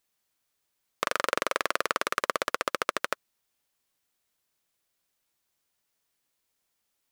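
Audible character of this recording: noise floor -79 dBFS; spectral tilt -1.0 dB/octave

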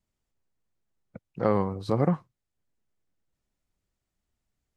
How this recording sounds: noise floor -84 dBFS; spectral tilt -7.0 dB/octave

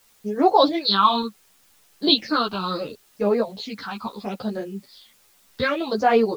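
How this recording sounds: phasing stages 6, 0.69 Hz, lowest notch 510–3800 Hz; a quantiser's noise floor 10-bit, dither triangular; a shimmering, thickened sound

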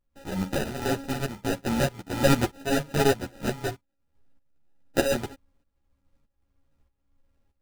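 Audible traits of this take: a buzz of ramps at a fixed pitch in blocks of 32 samples; tremolo saw up 1.6 Hz, depth 80%; aliases and images of a low sample rate 1.1 kHz, jitter 0%; a shimmering, thickened sound

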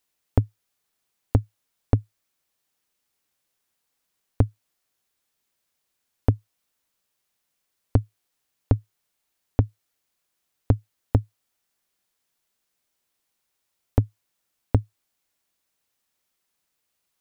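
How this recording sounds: noise floor -78 dBFS; spectral tilt -9.0 dB/octave

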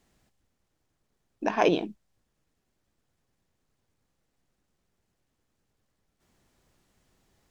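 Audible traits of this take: noise floor -79 dBFS; spectral tilt -3.5 dB/octave

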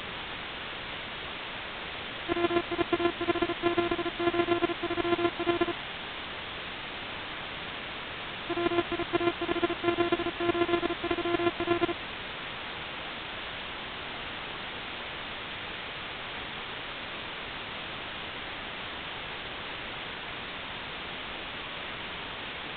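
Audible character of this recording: a buzz of ramps at a fixed pitch in blocks of 128 samples; chopped level 8.2 Hz, depth 60%, duty 15%; a quantiser's noise floor 6-bit, dither triangular; A-law

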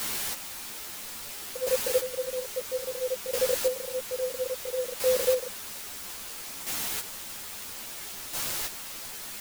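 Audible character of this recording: a quantiser's noise floor 6-bit, dither triangular; chopped level 0.6 Hz, depth 60%, duty 20%; a shimmering, thickened sound

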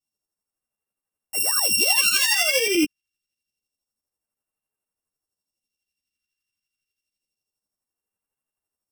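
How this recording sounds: a buzz of ramps at a fixed pitch in blocks of 16 samples; phasing stages 2, 0.27 Hz, lowest notch 690–3900 Hz; tremolo saw up 12 Hz, depth 65%; a shimmering, thickened sound

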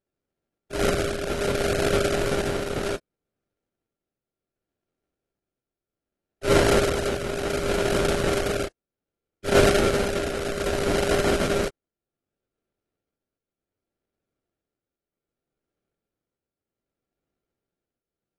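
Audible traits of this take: a buzz of ramps at a fixed pitch in blocks of 32 samples; tremolo triangle 0.65 Hz, depth 60%; aliases and images of a low sample rate 1 kHz, jitter 20%; AAC

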